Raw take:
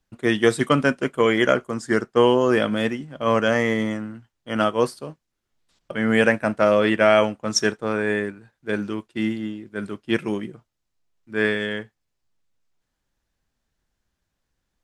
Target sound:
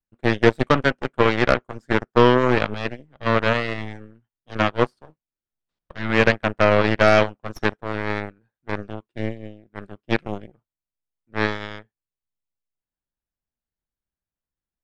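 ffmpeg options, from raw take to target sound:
ffmpeg -i in.wav -filter_complex "[0:a]aemphasis=mode=reproduction:type=75fm,aeval=exprs='0.75*(cos(1*acos(clip(val(0)/0.75,-1,1)))-cos(1*PI/2))+0.0944*(cos(7*acos(clip(val(0)/0.75,-1,1)))-cos(7*PI/2))+0.0668*(cos(8*acos(clip(val(0)/0.75,-1,1)))-cos(8*PI/2))':channel_layout=same,acrossover=split=5100[link_01][link_02];[link_02]acompressor=threshold=-48dB:ratio=4:attack=1:release=60[link_03];[link_01][link_03]amix=inputs=2:normalize=0,volume=1.5dB" out.wav

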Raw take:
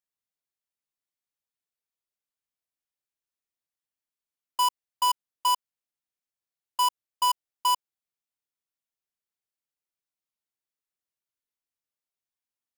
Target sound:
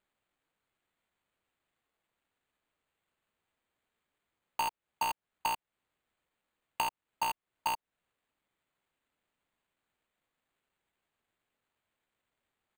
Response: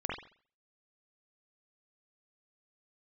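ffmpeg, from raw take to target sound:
-filter_complex "[0:a]acrossover=split=460[link_01][link_02];[link_02]acompressor=threshold=-33dB:ratio=4[link_03];[link_01][link_03]amix=inputs=2:normalize=0,highshelf=frequency=7200:gain=9.5,asetrate=40440,aresample=44100,atempo=1.09051,acrossover=split=800[link_04][link_05];[link_05]acrusher=samples=8:mix=1:aa=0.000001[link_06];[link_04][link_06]amix=inputs=2:normalize=0"

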